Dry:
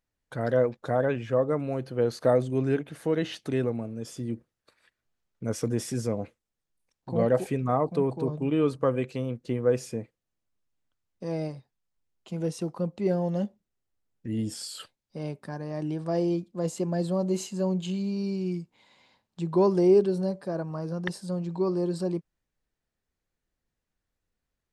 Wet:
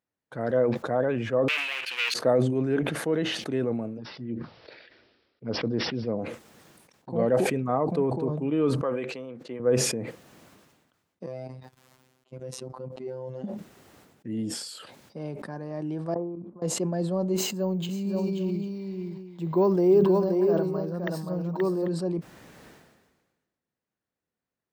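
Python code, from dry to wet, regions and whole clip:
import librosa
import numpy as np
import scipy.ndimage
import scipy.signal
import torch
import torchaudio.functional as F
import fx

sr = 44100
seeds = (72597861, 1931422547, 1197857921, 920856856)

y = fx.chain(x, sr, fx.leveller(passes=5),
    fx.highpass_res(hz=2600.0, q=5.5), at=(1.48, 2.14))
y = fx.chain(y, sr, fx.env_phaser(low_hz=160.0, high_hz=3300.0, full_db=-23.5),
    fx.resample_bad(factor=4, down='none', up='filtered'), at=(3.97, 6.19))
y = fx.chain(y, sr, fx.highpass(hz=650.0, slope=6),
    fx.high_shelf(hz=6900.0, db=-11.5), at=(8.83, 9.6))
y = fx.chain(y, sr, fx.level_steps(step_db=16),
    fx.robotise(hz=129.0), at=(11.26, 13.44))
y = fx.chain(y, sr, fx.level_steps(step_db=13),
    fx.ladder_lowpass(hz=1300.0, resonance_pct=50), at=(16.14, 16.62))
y = fx.chain(y, sr, fx.resample_bad(factor=2, down='filtered', up='hold'),
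    fx.echo_multitap(ms=(527, 791), db=(-4.0, -15.5)), at=(17.36, 21.88))
y = scipy.signal.sosfilt(scipy.signal.butter(2, 150.0, 'highpass', fs=sr, output='sos'), y)
y = fx.high_shelf(y, sr, hz=2800.0, db=-9.0)
y = fx.sustainer(y, sr, db_per_s=43.0)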